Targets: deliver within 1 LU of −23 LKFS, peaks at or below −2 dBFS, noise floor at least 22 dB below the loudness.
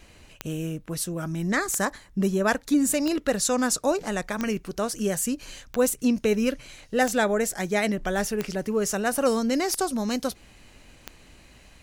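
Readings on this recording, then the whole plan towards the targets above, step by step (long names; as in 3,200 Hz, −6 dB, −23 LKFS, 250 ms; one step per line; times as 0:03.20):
number of clicks 9; integrated loudness −26.0 LKFS; sample peak −9.0 dBFS; target loudness −23.0 LKFS
→ click removal
level +3 dB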